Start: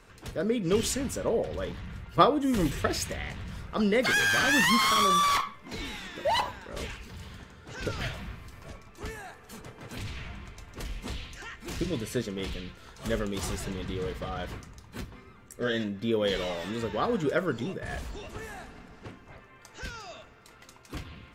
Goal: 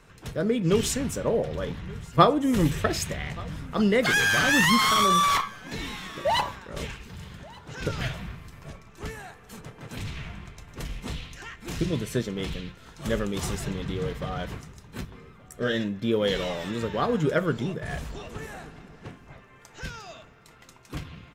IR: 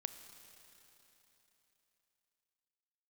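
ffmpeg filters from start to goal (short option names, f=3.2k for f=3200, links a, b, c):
-filter_complex "[0:a]equalizer=f=150:t=o:w=0.45:g=7.5,bandreject=f=4.6k:w=22,asplit=2[a][b];[b]aeval=exprs='sgn(val(0))*max(abs(val(0))-0.00841,0)':c=same,volume=-9dB[c];[a][c]amix=inputs=2:normalize=0,aecho=1:1:1179:0.0668"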